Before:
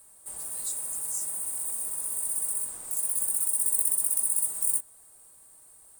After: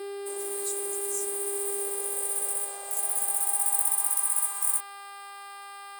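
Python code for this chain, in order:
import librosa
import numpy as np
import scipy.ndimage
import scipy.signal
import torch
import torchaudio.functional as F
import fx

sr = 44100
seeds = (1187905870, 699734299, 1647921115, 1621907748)

y = fx.dmg_buzz(x, sr, base_hz=400.0, harmonics=13, level_db=-45.0, tilt_db=-5, odd_only=False)
y = fx.filter_sweep_highpass(y, sr, from_hz=360.0, to_hz=1000.0, start_s=1.36, end_s=4.32, q=4.3)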